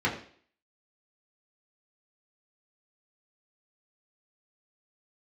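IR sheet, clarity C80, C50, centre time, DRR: 12.0 dB, 9.0 dB, 23 ms, -5.5 dB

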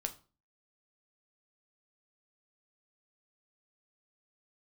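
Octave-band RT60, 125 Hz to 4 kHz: 0.45, 0.45, 0.40, 0.35, 0.30, 0.30 s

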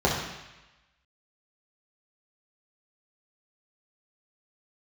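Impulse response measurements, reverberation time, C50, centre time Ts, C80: 1.0 s, 3.0 dB, 50 ms, 5.5 dB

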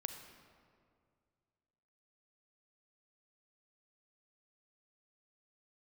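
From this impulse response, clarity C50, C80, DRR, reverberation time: 7.0 dB, 8.0 dB, 6.5 dB, 2.1 s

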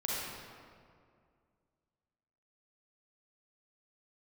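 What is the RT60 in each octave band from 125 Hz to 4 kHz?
2.5, 2.5, 2.3, 2.1, 1.7, 1.3 s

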